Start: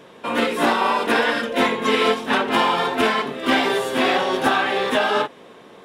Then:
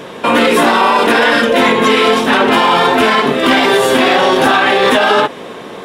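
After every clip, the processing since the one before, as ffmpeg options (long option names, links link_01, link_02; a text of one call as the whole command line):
ffmpeg -i in.wav -af "alimiter=level_in=17dB:limit=-1dB:release=50:level=0:latency=1,volume=-1dB" out.wav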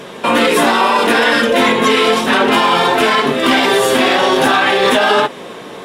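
ffmpeg -i in.wav -af "equalizer=frequency=9800:width=0.35:gain=4,flanger=delay=4.9:depth=4.4:regen=-61:speed=0.39:shape=sinusoidal,volume=2dB" out.wav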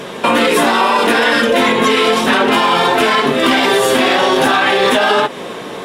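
ffmpeg -i in.wav -af "acompressor=threshold=-14dB:ratio=3,volume=4dB" out.wav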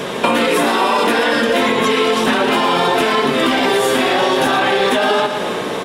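ffmpeg -i in.wav -filter_complex "[0:a]aecho=1:1:114|228|342|456|570:0.282|0.144|0.0733|0.0374|0.0191,acrossover=split=900|2300[link_01][link_02][link_03];[link_01]acompressor=threshold=-19dB:ratio=4[link_04];[link_02]acompressor=threshold=-27dB:ratio=4[link_05];[link_03]acompressor=threshold=-28dB:ratio=4[link_06];[link_04][link_05][link_06]amix=inputs=3:normalize=0,volume=4dB" out.wav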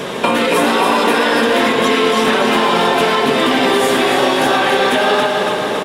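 ffmpeg -i in.wav -af "aecho=1:1:280|560|840|1120|1400|1680|1960|2240:0.501|0.296|0.174|0.103|0.0607|0.0358|0.0211|0.0125" out.wav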